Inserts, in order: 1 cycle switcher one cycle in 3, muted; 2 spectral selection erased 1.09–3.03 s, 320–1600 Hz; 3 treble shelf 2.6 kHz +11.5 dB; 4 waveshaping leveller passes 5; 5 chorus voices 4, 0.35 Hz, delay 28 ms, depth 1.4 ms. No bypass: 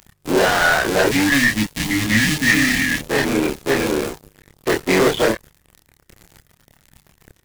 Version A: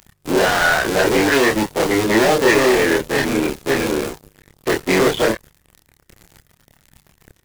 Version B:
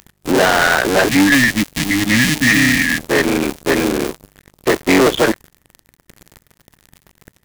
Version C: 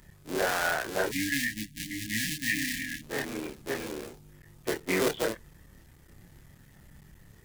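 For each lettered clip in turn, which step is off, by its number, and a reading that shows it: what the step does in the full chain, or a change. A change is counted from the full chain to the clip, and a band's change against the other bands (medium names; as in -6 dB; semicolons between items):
2, 500 Hz band +4.5 dB; 5, loudness change +3.0 LU; 4, crest factor change +8.0 dB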